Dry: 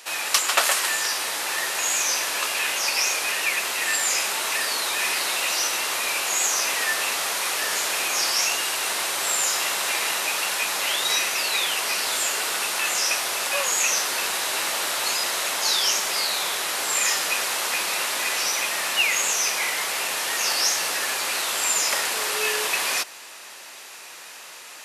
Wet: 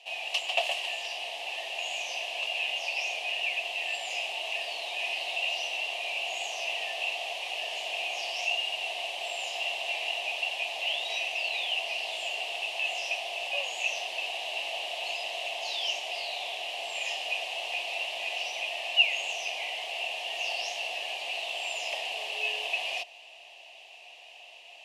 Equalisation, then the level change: double band-pass 1400 Hz, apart 2 oct; +1.5 dB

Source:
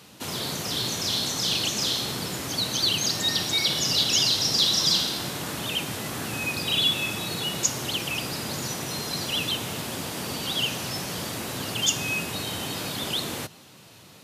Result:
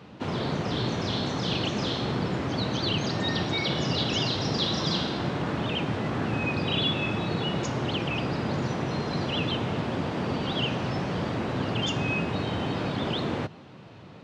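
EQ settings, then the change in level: tape spacing loss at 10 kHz 38 dB; +7.0 dB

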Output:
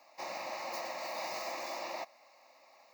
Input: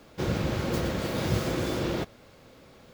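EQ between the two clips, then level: ladder high-pass 470 Hz, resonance 35%; fixed phaser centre 2200 Hz, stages 8; +4.5 dB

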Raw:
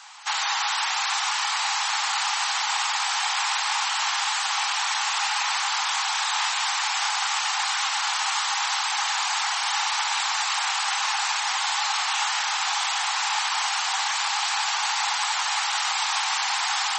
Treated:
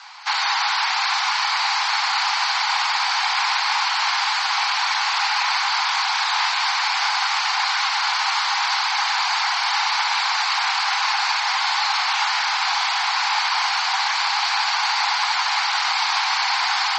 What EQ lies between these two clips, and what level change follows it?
speaker cabinet 420–5900 Hz, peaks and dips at 720 Hz +5 dB, 1000 Hz +6 dB, 1500 Hz +5 dB, 2200 Hz +6 dB, 4500 Hz +8 dB; 0.0 dB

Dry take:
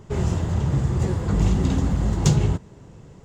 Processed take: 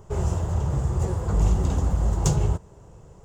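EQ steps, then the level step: ten-band EQ 125 Hz -5 dB, 250 Hz -12 dB, 2000 Hz -9 dB, 4000 Hz -9 dB; +2.5 dB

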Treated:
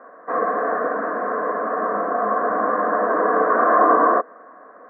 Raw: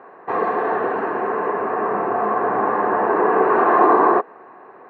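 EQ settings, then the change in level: three-band isolator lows -23 dB, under 200 Hz, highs -16 dB, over 2000 Hz; fixed phaser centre 570 Hz, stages 8; +3.5 dB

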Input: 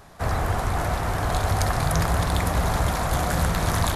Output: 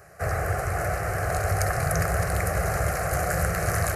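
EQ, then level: HPF 80 Hz 12 dB/oct; fixed phaser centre 950 Hz, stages 6; +2.0 dB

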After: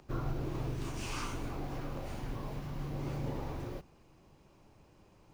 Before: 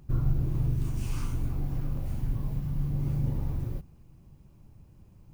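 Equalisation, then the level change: three-band isolator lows -18 dB, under 330 Hz, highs -14 dB, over 7300 Hz; +6.5 dB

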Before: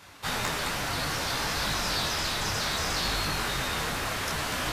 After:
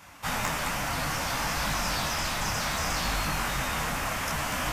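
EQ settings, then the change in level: fifteen-band EQ 100 Hz -5 dB, 400 Hz -10 dB, 1600 Hz -3 dB, 4000 Hz -10 dB, 10000 Hz -3 dB; +3.5 dB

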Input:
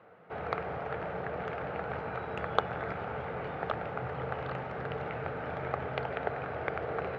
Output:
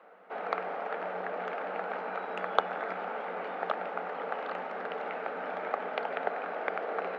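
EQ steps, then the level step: rippled Chebyshev high-pass 180 Hz, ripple 3 dB; low shelf 240 Hz -12 dB; +4.0 dB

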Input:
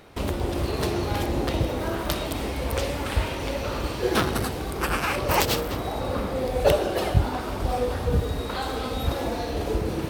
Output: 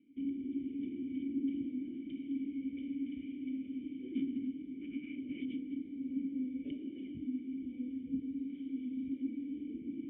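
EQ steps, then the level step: vocal tract filter i; vowel filter i; high shelf 2800 Hz -11.5 dB; +2.5 dB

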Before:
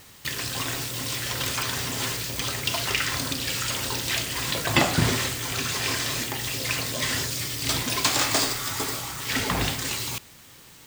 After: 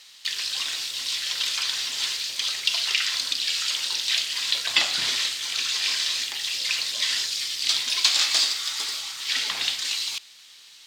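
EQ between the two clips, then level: band-pass 4000 Hz, Q 1.8; +7.5 dB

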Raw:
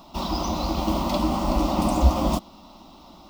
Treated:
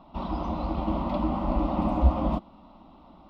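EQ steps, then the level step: air absorption 490 m; notch 360 Hz, Q 12; -2.5 dB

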